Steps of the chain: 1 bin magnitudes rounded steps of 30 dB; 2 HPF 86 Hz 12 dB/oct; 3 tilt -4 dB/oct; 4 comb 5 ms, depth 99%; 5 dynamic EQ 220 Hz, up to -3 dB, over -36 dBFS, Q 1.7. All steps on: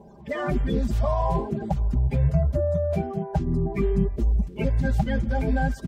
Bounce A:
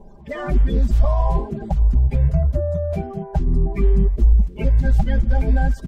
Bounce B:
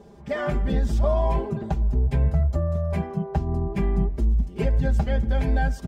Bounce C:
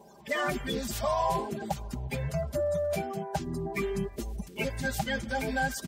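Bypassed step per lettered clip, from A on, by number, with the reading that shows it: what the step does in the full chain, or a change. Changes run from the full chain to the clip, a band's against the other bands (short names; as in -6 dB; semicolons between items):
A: 2, 125 Hz band +5.0 dB; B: 1, 125 Hz band +2.0 dB; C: 3, 125 Hz band -10.5 dB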